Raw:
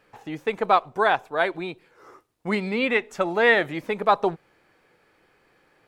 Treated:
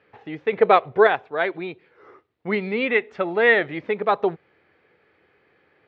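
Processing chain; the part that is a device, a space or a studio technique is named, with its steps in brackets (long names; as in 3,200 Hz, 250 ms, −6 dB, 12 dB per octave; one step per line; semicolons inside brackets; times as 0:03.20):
0:00.52–0:01.07: graphic EQ with 10 bands 125 Hz +9 dB, 500 Hz +8 dB, 2,000 Hz +6 dB, 4,000 Hz +5 dB, 8,000 Hz −9 dB
guitar cabinet (loudspeaker in its box 79–3,800 Hz, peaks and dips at 84 Hz +8 dB, 420 Hz +5 dB, 960 Hz −3 dB, 2,000 Hz +4 dB)
level −1 dB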